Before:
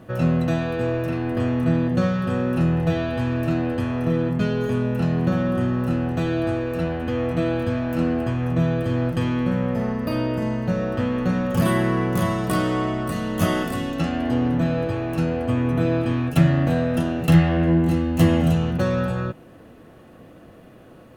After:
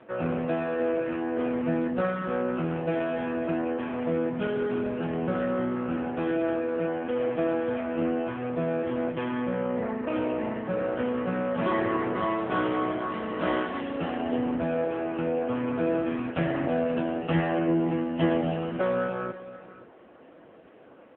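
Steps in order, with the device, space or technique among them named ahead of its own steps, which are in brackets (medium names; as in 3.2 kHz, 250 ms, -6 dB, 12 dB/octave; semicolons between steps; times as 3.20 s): 11.06–11.82 s: dynamic bell 2 kHz, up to -3 dB, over -42 dBFS, Q 5.2; satellite phone (band-pass 330–3100 Hz; delay 525 ms -16.5 dB; AMR-NB 6.7 kbps 8 kHz)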